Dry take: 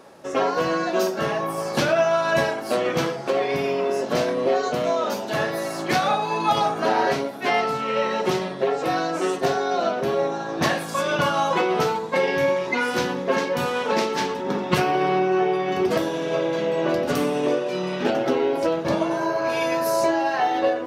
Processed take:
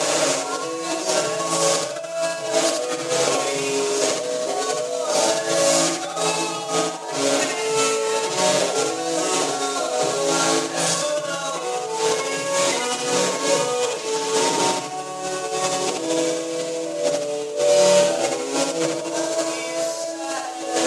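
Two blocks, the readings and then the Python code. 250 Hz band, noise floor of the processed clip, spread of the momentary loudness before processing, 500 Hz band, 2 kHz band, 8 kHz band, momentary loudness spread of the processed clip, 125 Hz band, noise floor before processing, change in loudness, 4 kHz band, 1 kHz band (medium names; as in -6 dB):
-2.5 dB, -29 dBFS, 4 LU, +1.0 dB, -1.5 dB, +16.0 dB, 7 LU, -4.5 dB, -31 dBFS, +1.5 dB, +7.0 dB, -1.5 dB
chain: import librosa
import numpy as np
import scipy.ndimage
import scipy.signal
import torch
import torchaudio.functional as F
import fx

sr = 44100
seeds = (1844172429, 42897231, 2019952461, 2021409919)

p1 = fx.delta_mod(x, sr, bps=64000, step_db=-25.0)
p2 = fx.high_shelf(p1, sr, hz=5700.0, db=11.5)
p3 = fx.hum_notches(p2, sr, base_hz=60, count=3)
p4 = p3 + 0.89 * np.pad(p3, (int(6.5 * sr / 1000.0), 0))[:len(p3)]
p5 = fx.over_compress(p4, sr, threshold_db=-24.0, ratio=-0.5)
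p6 = fx.cabinet(p5, sr, low_hz=140.0, low_slope=24, high_hz=8500.0, hz=(200.0, 580.0, 1800.0, 6900.0), db=(-10, 7, -4, 4))
y = p6 + fx.echo_feedback(p6, sr, ms=77, feedback_pct=37, wet_db=-4, dry=0)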